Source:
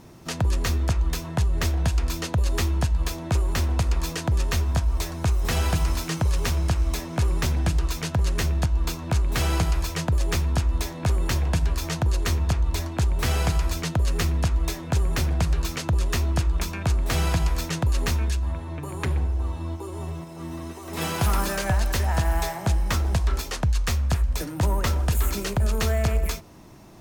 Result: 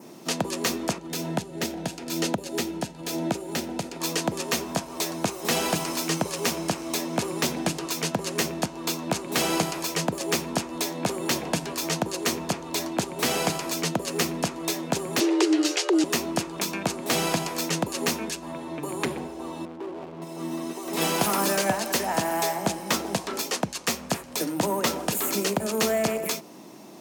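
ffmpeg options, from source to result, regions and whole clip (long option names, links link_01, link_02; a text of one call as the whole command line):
ffmpeg -i in.wav -filter_complex "[0:a]asettb=1/sr,asplit=3[link_01][link_02][link_03];[link_01]atrim=end=0.984[link_04];[link_02]atrim=start=0.98:end=4.01,asetpts=PTS-STARTPTS,afade=type=in:duration=0.004:curve=qsin,afade=type=out:start_time=3.026:duration=0.004:curve=qsin,lowshelf=frequency=380:gain=5.5,acompressor=threshold=-22dB:ratio=3:attack=3.2:release=140:knee=1:detection=peak,asuperstop=centerf=1100:order=4:qfactor=5.7[link_05];[link_03]atrim=start=4.006[link_06];[link_04][link_05]acrossfade=duration=0.004:curve1=hsin:curve2=qsin[link_07];[link_07][link_06]acrossfade=duration=0.004:curve1=qsin:curve2=hsin,asettb=1/sr,asplit=3[link_08][link_09][link_10];[link_08]atrim=end=15.204[link_11];[link_09]atrim=start=15.2:end=16.04,asetpts=PTS-STARTPTS,afade=type=in:duration=0.004:curve=qsin,afade=type=out:start_time=0.836:duration=0.004:curve=qsin,lowpass=6500,tiltshelf=frequency=1100:gain=-5,afreqshift=260[link_12];[link_10]atrim=start=16.036[link_13];[link_11][link_12]acrossfade=duration=0.004:curve1=hsin:curve2=qsin[link_14];[link_14][link_13]acrossfade=duration=0.004:curve1=qsin:curve2=hsin,asettb=1/sr,asplit=3[link_15][link_16][link_17];[link_15]atrim=end=19.654[link_18];[link_16]atrim=start=19.65:end=20.22,asetpts=PTS-STARTPTS,afade=type=in:duration=0.004:curve=qsin,afade=type=out:start_time=0.566:duration=0.004:curve=qsin,highpass=57,adynamicsmooth=sensitivity=6.5:basefreq=780,asoftclip=type=hard:threshold=-34.5dB[link_19];[link_17]atrim=start=20.216[link_20];[link_18][link_19]acrossfade=duration=0.004:curve1=hsin:curve2=qsin[link_21];[link_21][link_20]acrossfade=duration=0.004:curve1=qsin:curve2=hsin,adynamicequalizer=threshold=0.00355:dfrequency=3700:dqfactor=2.9:tfrequency=3700:tqfactor=2.9:attack=5:release=100:ratio=0.375:range=1.5:mode=cutabove:tftype=bell,highpass=frequency=200:width=0.5412,highpass=frequency=200:width=1.3066,equalizer=frequency=1500:width=1.2:gain=-5.5,volume=5.5dB" out.wav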